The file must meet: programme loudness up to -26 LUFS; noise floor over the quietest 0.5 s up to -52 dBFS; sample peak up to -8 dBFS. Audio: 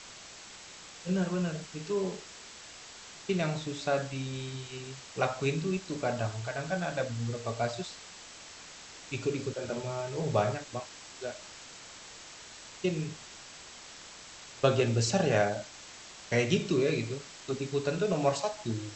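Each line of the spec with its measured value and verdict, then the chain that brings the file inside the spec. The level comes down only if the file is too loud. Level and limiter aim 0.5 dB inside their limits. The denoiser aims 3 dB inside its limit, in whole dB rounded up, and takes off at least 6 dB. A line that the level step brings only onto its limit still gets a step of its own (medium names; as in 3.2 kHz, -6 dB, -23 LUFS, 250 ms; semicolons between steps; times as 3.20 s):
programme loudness -32.0 LUFS: pass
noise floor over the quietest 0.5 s -49 dBFS: fail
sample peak -10.5 dBFS: pass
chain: noise reduction 6 dB, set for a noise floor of -49 dBFS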